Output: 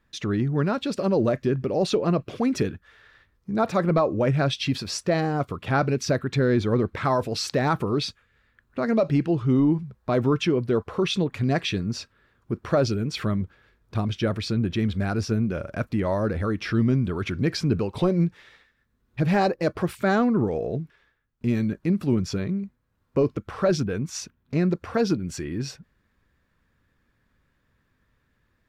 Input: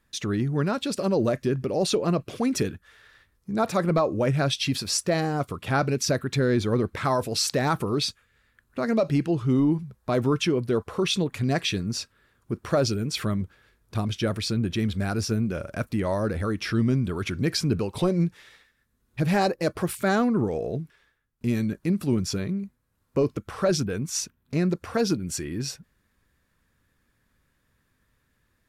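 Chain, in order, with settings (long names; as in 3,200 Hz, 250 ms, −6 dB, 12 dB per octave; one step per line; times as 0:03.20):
parametric band 11,000 Hz −13.5 dB 1.5 octaves
level +1.5 dB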